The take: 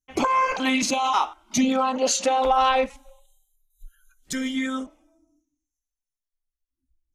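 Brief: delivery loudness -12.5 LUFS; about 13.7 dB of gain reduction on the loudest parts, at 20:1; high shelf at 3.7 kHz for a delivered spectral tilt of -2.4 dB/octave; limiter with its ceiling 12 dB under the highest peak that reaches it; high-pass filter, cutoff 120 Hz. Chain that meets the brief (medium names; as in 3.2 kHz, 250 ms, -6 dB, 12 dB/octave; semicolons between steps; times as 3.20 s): high-pass 120 Hz; treble shelf 3.7 kHz -4 dB; compression 20:1, threshold -30 dBFS; trim +27 dB; peak limiter -4.5 dBFS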